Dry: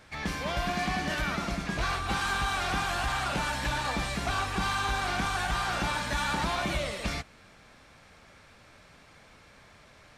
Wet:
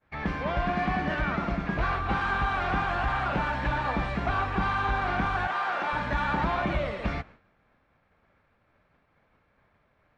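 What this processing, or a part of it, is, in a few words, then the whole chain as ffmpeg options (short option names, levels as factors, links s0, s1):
hearing-loss simulation: -filter_complex "[0:a]lowpass=1900,agate=range=0.0224:threshold=0.00501:ratio=3:detection=peak,asettb=1/sr,asplit=3[s0][s1][s2];[s0]atrim=end=5.474[s3];[s1]atrim=start=5.47:end=5.93,asetpts=PTS-STARTPTS,afade=t=in:d=0.004:c=qsin,afade=t=out:st=0.456:d=0.004:c=qsin,highpass=440[s4];[s2]atrim=start=5.926[s5];[s3][s4]acrossfade=d=0.004:c1=hsin:c2=qsin[s6];[s6][s5]acrossfade=d=0.004:c1=qsin:c2=hsin,volume=1.5"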